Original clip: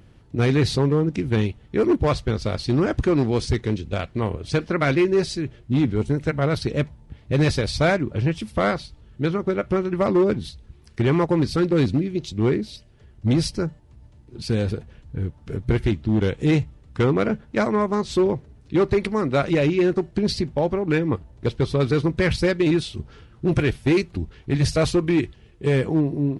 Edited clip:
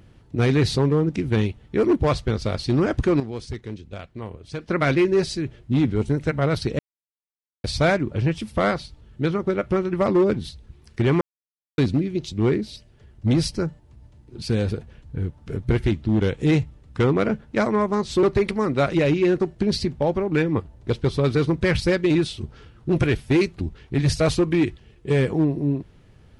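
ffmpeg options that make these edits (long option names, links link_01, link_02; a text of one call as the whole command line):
ffmpeg -i in.wav -filter_complex "[0:a]asplit=8[link_01][link_02][link_03][link_04][link_05][link_06][link_07][link_08];[link_01]atrim=end=3.202[link_09];[link_02]atrim=start=3.198:end=4.682,asetpts=PTS-STARTPTS,volume=-10dB[link_10];[link_03]atrim=start=4.678:end=6.79,asetpts=PTS-STARTPTS,afade=type=out:start_time=2.108:duration=0.004:curve=hsin[link_11];[link_04]atrim=start=6.79:end=7.64,asetpts=PTS-STARTPTS,volume=0[link_12];[link_05]atrim=start=7.64:end=11.21,asetpts=PTS-STARTPTS,afade=type=in:duration=0.004:curve=hsin,afade=type=out:start_time=3.566:duration=0.004:curve=hsin[link_13];[link_06]atrim=start=11.21:end=11.78,asetpts=PTS-STARTPTS,volume=0[link_14];[link_07]atrim=start=11.78:end=18.232,asetpts=PTS-STARTPTS,afade=type=in:duration=0.004:curve=hsin[link_15];[link_08]atrim=start=18.788[link_16];[link_09][link_10]acrossfade=duration=0.004:curve1=hsin:curve2=hsin[link_17];[link_11][link_12][link_13][link_14][link_15]concat=n=5:v=0:a=1[link_18];[link_17][link_18]acrossfade=duration=0.004:curve1=hsin:curve2=hsin[link_19];[link_19][link_16]acrossfade=duration=0.004:curve1=hsin:curve2=hsin" out.wav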